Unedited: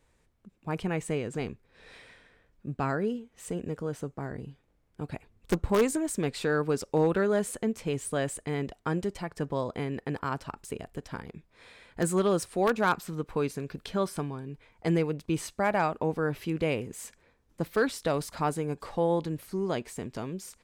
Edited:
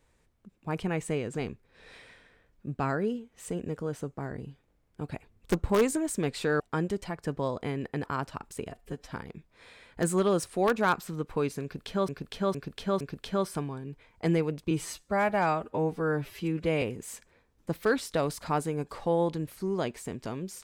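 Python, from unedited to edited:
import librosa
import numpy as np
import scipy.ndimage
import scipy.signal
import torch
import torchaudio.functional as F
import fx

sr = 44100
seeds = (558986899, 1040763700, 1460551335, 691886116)

y = fx.edit(x, sr, fx.cut(start_s=6.6, length_s=2.13),
    fx.stretch_span(start_s=10.83, length_s=0.27, factor=1.5),
    fx.repeat(start_s=13.62, length_s=0.46, count=4),
    fx.stretch_span(start_s=15.32, length_s=1.41, factor=1.5), tone=tone)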